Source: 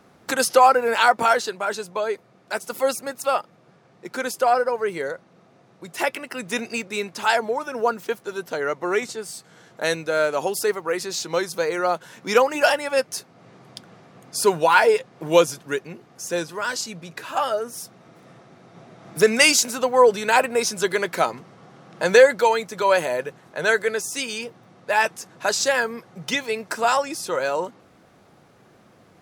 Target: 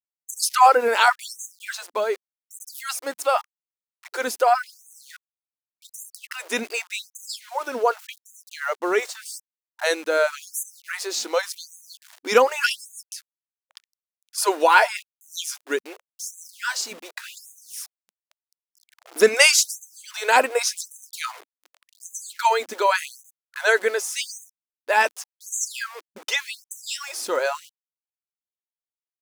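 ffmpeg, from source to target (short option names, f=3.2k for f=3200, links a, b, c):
-filter_complex "[0:a]aeval=exprs='val(0)*gte(abs(val(0)),0.0126)':c=same,asettb=1/sr,asplit=3[a][b][c];[a]atrim=end=13.134[d];[b]atrim=start=13.13:end=14.38,asetpts=PTS-STARTPTS,afade=t=in:d=0.004:c=qsin,afade=t=out:st=1.246:d=0.004:c=qsin,highshelf=f=2.3k:g=-9[e];[c]atrim=start=14.376[f];[d][e]acrossfade=d=0.004:c1=hsin:c2=qsin[g];[g][f]acrossfade=d=0.004:c1=qsin:c2=hsin,afftfilt=real='re*gte(b*sr/1024,210*pow(6200/210,0.5+0.5*sin(2*PI*0.87*pts/sr)))':imag='im*gte(b*sr/1024,210*pow(6200/210,0.5+0.5*sin(2*PI*0.87*pts/sr)))':win_size=1024:overlap=0.75,volume=1dB"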